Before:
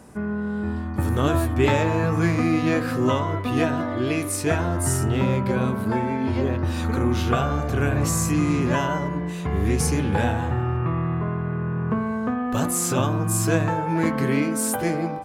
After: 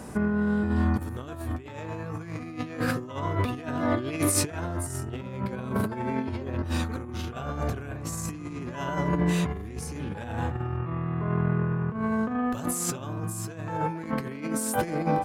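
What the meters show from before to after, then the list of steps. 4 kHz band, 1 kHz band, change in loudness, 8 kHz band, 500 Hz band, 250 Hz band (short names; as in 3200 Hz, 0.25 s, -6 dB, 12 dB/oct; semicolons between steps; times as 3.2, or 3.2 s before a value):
-6.0 dB, -5.5 dB, -6.5 dB, -5.0 dB, -7.5 dB, -6.0 dB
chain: negative-ratio compressor -28 dBFS, ratio -0.5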